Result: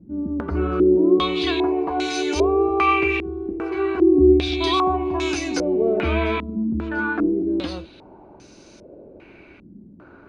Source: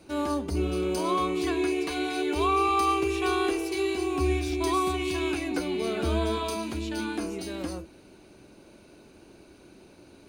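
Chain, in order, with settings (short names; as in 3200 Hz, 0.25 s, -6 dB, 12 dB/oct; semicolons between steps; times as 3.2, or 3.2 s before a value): stepped low-pass 2.5 Hz 210–5900 Hz; gain +4.5 dB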